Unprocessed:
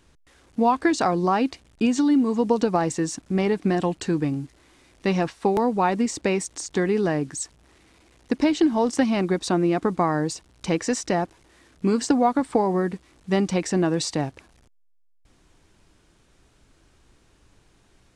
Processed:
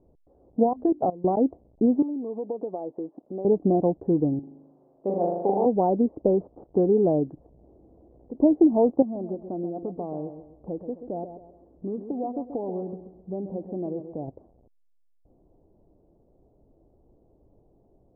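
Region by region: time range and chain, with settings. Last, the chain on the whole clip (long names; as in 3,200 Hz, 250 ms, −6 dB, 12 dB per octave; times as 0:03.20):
0:00.63–0:01.37: low-shelf EQ 87 Hz +5.5 dB + mains-hum notches 50/100/150/200/250/300/350/400 Hz + output level in coarse steps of 21 dB
0:02.02–0:03.45: high-pass filter 340 Hz + downward compressor 3 to 1, threshold −32 dBFS
0:04.39–0:05.66: high-pass filter 630 Hz 6 dB per octave + flutter between parallel walls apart 6.9 metres, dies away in 1.1 s
0:06.16–0:06.64: variable-slope delta modulation 32 kbit/s + flat-topped bell 2,500 Hz −12.5 dB 1 octave
0:07.37–0:08.35: tilt shelving filter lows +4 dB, about 830 Hz + multiband upward and downward compressor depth 100%
0:09.02–0:14.28: downward compressor 2 to 1, threshold −38 dBFS + repeating echo 132 ms, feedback 38%, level −9.5 dB
whole clip: Butterworth low-pass 680 Hz 36 dB per octave; low-shelf EQ 340 Hz −11 dB; level +7.5 dB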